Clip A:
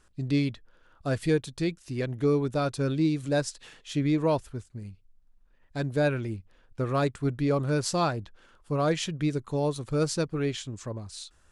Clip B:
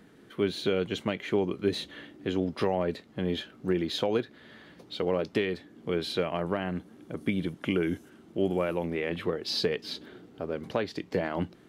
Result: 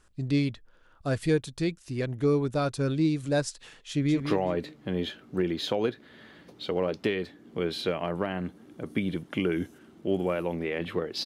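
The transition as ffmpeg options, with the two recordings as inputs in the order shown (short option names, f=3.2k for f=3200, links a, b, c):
-filter_complex "[0:a]apad=whole_dur=11.25,atrim=end=11.25,atrim=end=4.202[a];[1:a]atrim=start=2.508:end=9.56[b];[a][b]acrossfade=d=0.004:c1=hsin:c2=hsin,asplit=2[c][d];[d]afade=t=in:st=3.89:d=0.01,afade=t=out:st=4.2:d=0.01,aecho=0:1:190|380|570|760:0.446684|0.156339|0.0547187|0.0191516[e];[c][e]amix=inputs=2:normalize=0"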